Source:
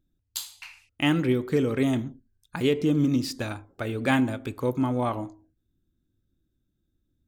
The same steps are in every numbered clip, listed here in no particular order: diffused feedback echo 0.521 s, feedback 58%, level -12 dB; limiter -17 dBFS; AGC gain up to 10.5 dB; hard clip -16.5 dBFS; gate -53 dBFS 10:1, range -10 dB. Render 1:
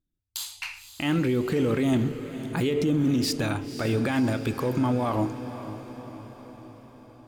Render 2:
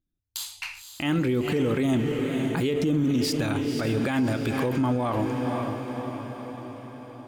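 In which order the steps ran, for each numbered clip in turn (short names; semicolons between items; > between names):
AGC > limiter > hard clip > diffused feedback echo > gate; gate > AGC > diffused feedback echo > limiter > hard clip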